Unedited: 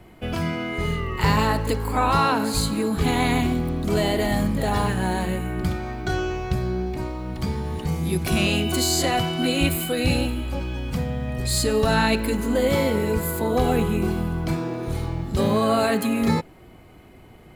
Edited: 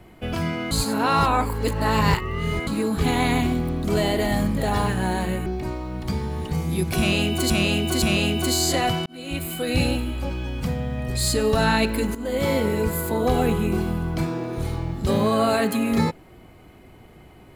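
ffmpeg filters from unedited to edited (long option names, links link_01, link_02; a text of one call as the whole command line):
ffmpeg -i in.wav -filter_complex "[0:a]asplit=8[link_01][link_02][link_03][link_04][link_05][link_06][link_07][link_08];[link_01]atrim=end=0.712[link_09];[link_02]atrim=start=0.708:end=2.672,asetpts=PTS-STARTPTS,areverse[link_10];[link_03]atrim=start=2.668:end=5.462[link_11];[link_04]atrim=start=6.798:end=8.842[link_12];[link_05]atrim=start=8.318:end=8.842[link_13];[link_06]atrim=start=8.318:end=9.36,asetpts=PTS-STARTPTS,afade=type=out:start_time=1.038:duration=0.004:curve=hsin[link_14];[link_07]atrim=start=9.36:end=12.45,asetpts=PTS-STARTPTS,afade=type=in:duration=0.72,afade=type=out:start_time=3.086:duration=0.004:curve=hsin:silence=0.223872[link_15];[link_08]atrim=start=12.45,asetpts=PTS-STARTPTS,afade=type=in:duration=0.39:silence=0.223872[link_16];[link_09][link_10]acrossfade=duration=0.004:curve1=hsin:curve2=hsin[link_17];[link_17][link_11]acrossfade=duration=0.004:curve1=hsin:curve2=hsin[link_18];[link_18][link_12]acrossfade=duration=0.004:curve1=hsin:curve2=hsin[link_19];[link_19][link_13]acrossfade=duration=0.004:curve1=hsin:curve2=hsin[link_20];[link_14][link_15][link_16]concat=n=3:v=0:a=1[link_21];[link_20][link_21]acrossfade=duration=0.004:curve1=hsin:curve2=hsin" out.wav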